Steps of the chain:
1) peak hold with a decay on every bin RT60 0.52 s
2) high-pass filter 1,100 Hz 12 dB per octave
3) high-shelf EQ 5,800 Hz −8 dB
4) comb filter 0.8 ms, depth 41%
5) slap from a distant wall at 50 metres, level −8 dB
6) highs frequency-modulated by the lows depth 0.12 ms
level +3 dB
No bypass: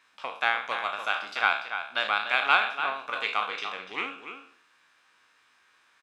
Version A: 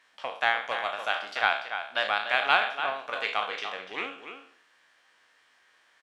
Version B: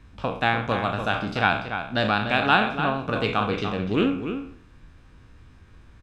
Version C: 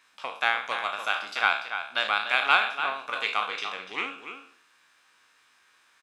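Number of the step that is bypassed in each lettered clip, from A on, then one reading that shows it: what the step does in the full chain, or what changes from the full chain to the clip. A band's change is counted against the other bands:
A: 4, 500 Hz band +4.0 dB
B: 2, 250 Hz band +21.0 dB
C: 3, 4 kHz band +2.0 dB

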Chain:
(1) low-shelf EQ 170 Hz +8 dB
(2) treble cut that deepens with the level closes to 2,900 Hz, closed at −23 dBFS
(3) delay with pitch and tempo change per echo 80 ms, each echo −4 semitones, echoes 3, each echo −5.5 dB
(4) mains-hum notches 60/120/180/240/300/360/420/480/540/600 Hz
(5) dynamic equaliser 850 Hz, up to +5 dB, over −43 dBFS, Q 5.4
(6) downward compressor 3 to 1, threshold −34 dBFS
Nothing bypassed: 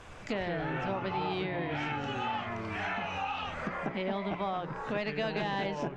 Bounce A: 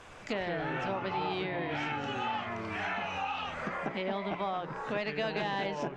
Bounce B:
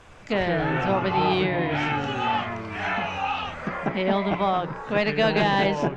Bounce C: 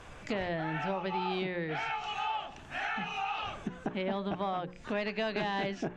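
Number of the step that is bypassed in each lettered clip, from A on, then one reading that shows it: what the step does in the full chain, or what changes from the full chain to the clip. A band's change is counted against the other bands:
1, 125 Hz band −3.5 dB
6, average gain reduction 8.0 dB
3, change in momentary loudness spread +2 LU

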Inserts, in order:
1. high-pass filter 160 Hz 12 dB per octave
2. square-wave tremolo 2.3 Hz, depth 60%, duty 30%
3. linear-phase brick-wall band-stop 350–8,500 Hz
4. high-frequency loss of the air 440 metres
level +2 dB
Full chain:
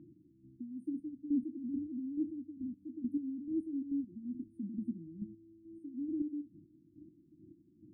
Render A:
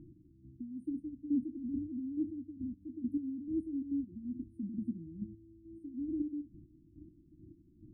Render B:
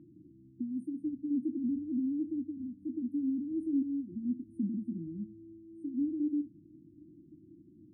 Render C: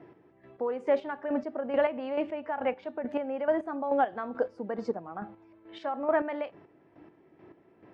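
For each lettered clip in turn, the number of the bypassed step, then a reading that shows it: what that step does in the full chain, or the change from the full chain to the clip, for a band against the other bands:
1, change in momentary loudness spread +6 LU
2, change in momentary loudness spread −6 LU
3, change in crest factor +2.0 dB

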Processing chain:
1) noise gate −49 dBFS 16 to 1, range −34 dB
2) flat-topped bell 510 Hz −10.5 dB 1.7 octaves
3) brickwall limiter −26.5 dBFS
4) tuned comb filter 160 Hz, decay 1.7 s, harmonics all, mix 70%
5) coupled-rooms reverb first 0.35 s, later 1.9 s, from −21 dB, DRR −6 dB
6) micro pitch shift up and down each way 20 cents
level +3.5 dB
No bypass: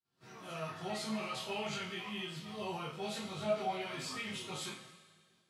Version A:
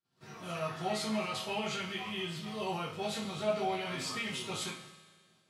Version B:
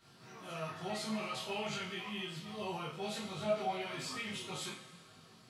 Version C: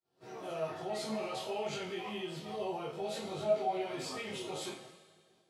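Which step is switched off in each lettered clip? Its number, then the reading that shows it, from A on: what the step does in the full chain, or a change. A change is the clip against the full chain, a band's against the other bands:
6, change in crest factor −2.0 dB
1, change in momentary loudness spread +5 LU
2, 500 Hz band +6.0 dB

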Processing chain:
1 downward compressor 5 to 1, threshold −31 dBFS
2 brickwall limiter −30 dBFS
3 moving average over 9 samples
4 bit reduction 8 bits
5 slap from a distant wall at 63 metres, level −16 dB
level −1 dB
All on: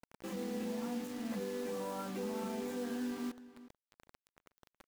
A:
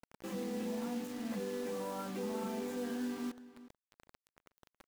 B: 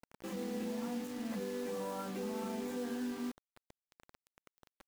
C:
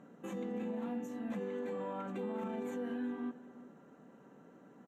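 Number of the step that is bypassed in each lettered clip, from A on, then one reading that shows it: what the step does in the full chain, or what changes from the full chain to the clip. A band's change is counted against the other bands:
1, average gain reduction 1.5 dB
5, echo-to-direct ratio −17.0 dB to none audible
4, distortion level −14 dB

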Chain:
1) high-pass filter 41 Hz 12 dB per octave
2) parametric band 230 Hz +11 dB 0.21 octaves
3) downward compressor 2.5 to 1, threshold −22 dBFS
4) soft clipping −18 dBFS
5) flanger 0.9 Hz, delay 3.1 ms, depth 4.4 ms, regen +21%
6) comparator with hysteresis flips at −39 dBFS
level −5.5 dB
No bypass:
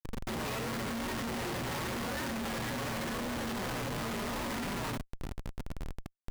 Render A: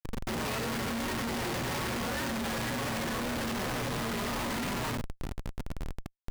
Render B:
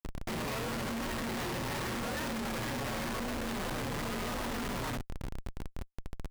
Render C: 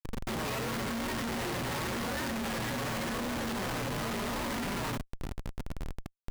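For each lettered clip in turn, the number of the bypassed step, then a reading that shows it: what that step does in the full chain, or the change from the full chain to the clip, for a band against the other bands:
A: 3, average gain reduction 3.5 dB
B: 1, change in momentary loudness spread +1 LU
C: 4, change in integrated loudness +2.0 LU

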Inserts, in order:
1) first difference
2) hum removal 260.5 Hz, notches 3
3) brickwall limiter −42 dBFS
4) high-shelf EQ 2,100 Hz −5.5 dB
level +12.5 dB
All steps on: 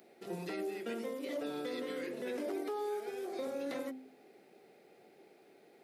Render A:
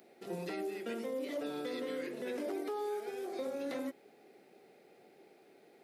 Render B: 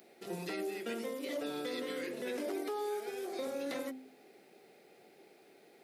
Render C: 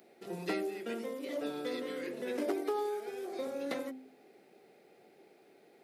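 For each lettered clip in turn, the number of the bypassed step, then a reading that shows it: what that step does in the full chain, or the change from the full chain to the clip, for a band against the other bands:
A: 2, change in momentary loudness spread −2 LU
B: 4, 8 kHz band +4.5 dB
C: 3, change in crest factor +6.5 dB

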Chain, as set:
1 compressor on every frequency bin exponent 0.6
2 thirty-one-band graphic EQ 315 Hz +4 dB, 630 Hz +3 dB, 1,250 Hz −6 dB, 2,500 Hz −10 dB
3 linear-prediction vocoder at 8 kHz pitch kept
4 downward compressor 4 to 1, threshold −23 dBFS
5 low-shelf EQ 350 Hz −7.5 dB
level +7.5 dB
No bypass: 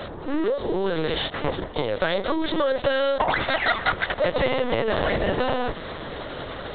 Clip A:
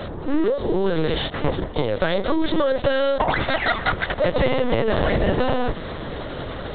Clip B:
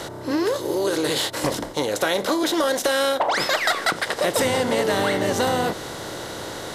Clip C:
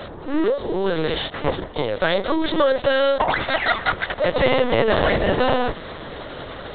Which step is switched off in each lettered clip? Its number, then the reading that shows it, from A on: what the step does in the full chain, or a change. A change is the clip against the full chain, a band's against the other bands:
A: 5, 125 Hz band +5.5 dB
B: 3, 4 kHz band +3.5 dB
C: 4, average gain reduction 2.5 dB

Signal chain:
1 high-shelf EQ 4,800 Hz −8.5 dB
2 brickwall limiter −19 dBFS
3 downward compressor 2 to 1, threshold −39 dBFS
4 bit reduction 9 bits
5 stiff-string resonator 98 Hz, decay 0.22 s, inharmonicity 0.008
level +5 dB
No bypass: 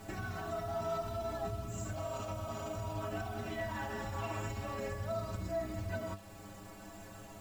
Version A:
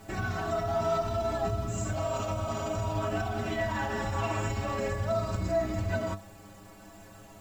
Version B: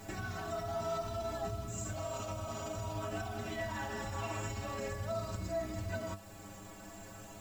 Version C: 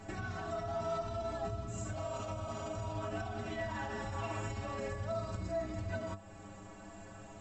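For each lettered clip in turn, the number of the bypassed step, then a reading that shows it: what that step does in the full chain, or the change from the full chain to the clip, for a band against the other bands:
3, average gain reduction 7.0 dB
1, 8 kHz band +5.0 dB
4, distortion level −23 dB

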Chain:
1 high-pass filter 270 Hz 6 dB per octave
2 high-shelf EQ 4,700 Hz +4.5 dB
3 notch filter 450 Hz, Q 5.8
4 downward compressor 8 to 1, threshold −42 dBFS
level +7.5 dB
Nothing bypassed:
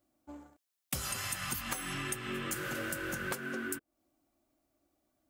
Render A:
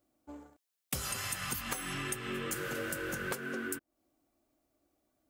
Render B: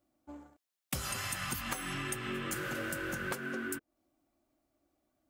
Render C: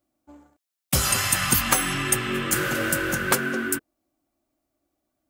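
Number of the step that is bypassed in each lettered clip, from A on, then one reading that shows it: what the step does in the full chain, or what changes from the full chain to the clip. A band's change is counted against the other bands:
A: 3, 500 Hz band +2.0 dB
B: 2, 8 kHz band −2.5 dB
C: 4, average gain reduction 12.5 dB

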